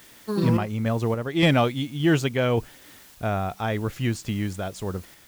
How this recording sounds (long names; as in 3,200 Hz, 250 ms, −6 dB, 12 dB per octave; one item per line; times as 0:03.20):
a quantiser's noise floor 8 bits, dither triangular
sample-and-hold tremolo